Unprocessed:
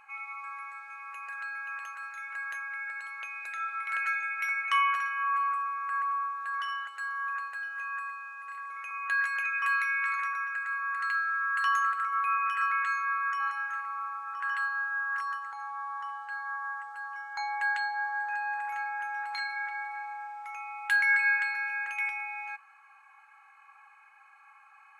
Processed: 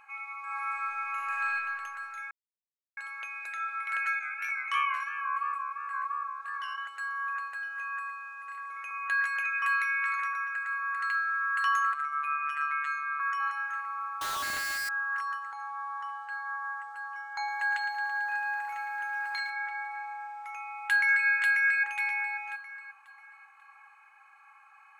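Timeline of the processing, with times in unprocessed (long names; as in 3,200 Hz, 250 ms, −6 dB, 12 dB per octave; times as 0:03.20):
0:00.44–0:01.48: thrown reverb, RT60 2.6 s, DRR −7.5 dB
0:02.31–0:02.97: silence
0:04.19–0:06.78: chorus effect 2.9 Hz, delay 18 ms, depth 7.4 ms
0:08.84–0:09.87: low-shelf EQ 150 Hz +9 dB
0:11.94–0:13.20: phases set to zero 146 Hz
0:14.21–0:14.89: sign of each sample alone
0:17.30–0:19.50: feedback echo at a low word length 111 ms, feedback 80%, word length 10 bits, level −10.5 dB
0:20.53–0:21.29: delay throw 540 ms, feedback 35%, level −2 dB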